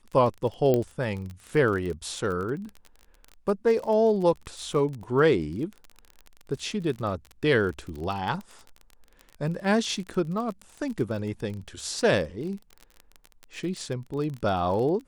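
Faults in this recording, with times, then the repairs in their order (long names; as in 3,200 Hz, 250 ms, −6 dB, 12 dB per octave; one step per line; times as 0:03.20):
surface crackle 25 per second −32 dBFS
0:00.74: click −12 dBFS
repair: click removal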